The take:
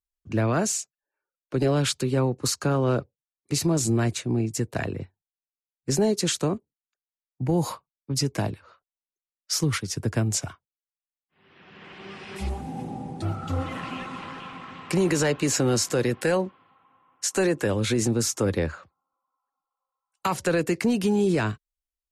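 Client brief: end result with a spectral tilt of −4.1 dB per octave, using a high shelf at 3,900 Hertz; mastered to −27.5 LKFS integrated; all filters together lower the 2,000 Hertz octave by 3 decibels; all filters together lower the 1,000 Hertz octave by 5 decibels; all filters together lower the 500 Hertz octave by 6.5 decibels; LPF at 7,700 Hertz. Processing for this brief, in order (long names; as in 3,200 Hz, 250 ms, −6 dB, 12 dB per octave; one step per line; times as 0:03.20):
low-pass filter 7,700 Hz
parametric band 500 Hz −8 dB
parametric band 1,000 Hz −3.5 dB
parametric band 2,000 Hz −3.5 dB
high-shelf EQ 3,900 Hz +5.5 dB
level −0.5 dB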